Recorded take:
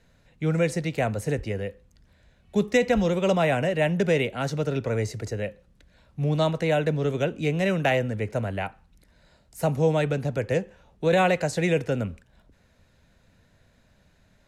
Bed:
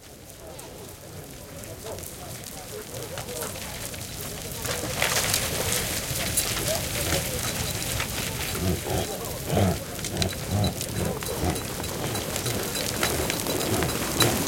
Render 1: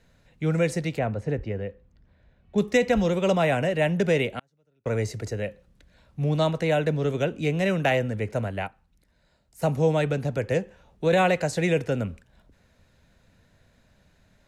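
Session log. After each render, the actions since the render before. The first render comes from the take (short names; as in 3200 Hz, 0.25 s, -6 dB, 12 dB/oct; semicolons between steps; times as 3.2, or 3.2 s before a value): 0.98–2.58 tape spacing loss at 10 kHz 24 dB; 4.39–4.86 flipped gate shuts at -27 dBFS, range -41 dB; 8.48–9.62 upward expander, over -41 dBFS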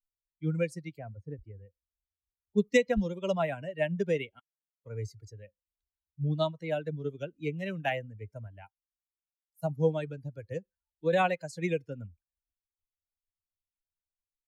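per-bin expansion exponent 2; upward expander 1.5:1, over -36 dBFS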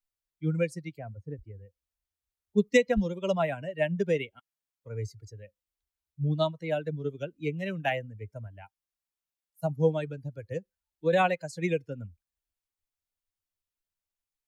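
gain +2 dB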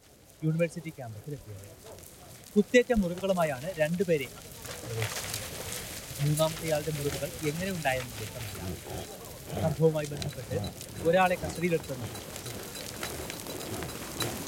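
add bed -11.5 dB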